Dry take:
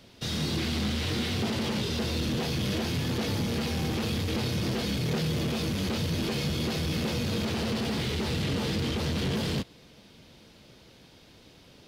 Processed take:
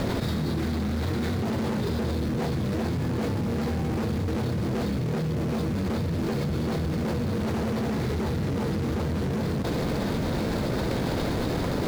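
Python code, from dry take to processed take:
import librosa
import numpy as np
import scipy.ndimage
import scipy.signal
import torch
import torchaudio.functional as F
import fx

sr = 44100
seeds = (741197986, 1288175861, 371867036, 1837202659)

y = scipy.ndimage.median_filter(x, 15, mode='constant')
y = fx.env_flatten(y, sr, amount_pct=100)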